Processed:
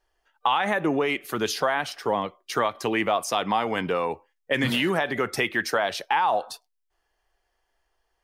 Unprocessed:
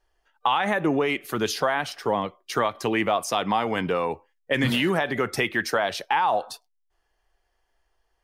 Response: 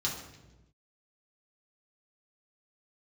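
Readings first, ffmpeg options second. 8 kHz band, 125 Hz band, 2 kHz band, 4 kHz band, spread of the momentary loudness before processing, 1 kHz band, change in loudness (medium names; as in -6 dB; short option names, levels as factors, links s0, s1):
0.0 dB, -3.0 dB, 0.0 dB, 0.0 dB, 6 LU, 0.0 dB, -0.5 dB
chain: -af "lowshelf=f=200:g=-4.5"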